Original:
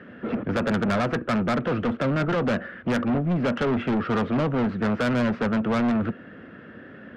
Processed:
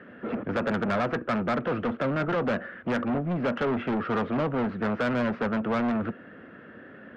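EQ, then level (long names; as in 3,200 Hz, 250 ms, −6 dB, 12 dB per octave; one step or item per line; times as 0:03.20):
low-pass filter 2,300 Hz 6 dB per octave
low-shelf EQ 270 Hz −7.5 dB
0.0 dB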